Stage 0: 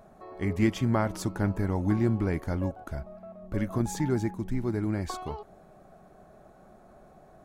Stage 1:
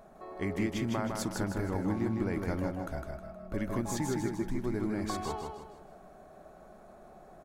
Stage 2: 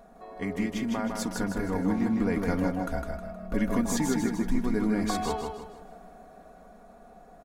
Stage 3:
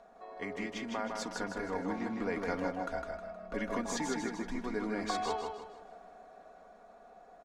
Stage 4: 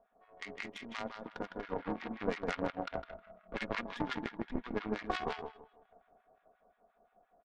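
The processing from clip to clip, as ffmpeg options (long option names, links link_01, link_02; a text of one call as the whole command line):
ffmpeg -i in.wav -filter_complex "[0:a]equalizer=frequency=100:width_type=o:width=1.7:gain=-6.5,acompressor=threshold=-29dB:ratio=6,asplit=2[link_01][link_02];[link_02]aecho=0:1:157|314|471|628|785:0.631|0.246|0.096|0.0374|0.0146[link_03];[link_01][link_03]amix=inputs=2:normalize=0" out.wav
ffmpeg -i in.wav -af "aecho=1:1:4.2:0.69,dynaudnorm=framelen=280:gausssize=13:maxgain=5dB" out.wav
ffmpeg -i in.wav -filter_complex "[0:a]acrossover=split=350 7400:gain=0.224 1 0.0891[link_01][link_02][link_03];[link_01][link_02][link_03]amix=inputs=3:normalize=0,volume=-2.5dB" out.wav
ffmpeg -i in.wav -filter_complex "[0:a]aresample=8000,aresample=44100,aeval=exprs='0.0944*(cos(1*acos(clip(val(0)/0.0944,-1,1)))-cos(1*PI/2))+0.0299*(cos(2*acos(clip(val(0)/0.0944,-1,1)))-cos(2*PI/2))+0.0188*(cos(6*acos(clip(val(0)/0.0944,-1,1)))-cos(6*PI/2))+0.0106*(cos(7*acos(clip(val(0)/0.0944,-1,1)))-cos(7*PI/2))+0.015*(cos(8*acos(clip(val(0)/0.0944,-1,1)))-cos(8*PI/2))':channel_layout=same,acrossover=split=1100[link_01][link_02];[link_01]aeval=exprs='val(0)*(1-1/2+1/2*cos(2*PI*5.7*n/s))':channel_layout=same[link_03];[link_02]aeval=exprs='val(0)*(1-1/2-1/2*cos(2*PI*5.7*n/s))':channel_layout=same[link_04];[link_03][link_04]amix=inputs=2:normalize=0,volume=4.5dB" out.wav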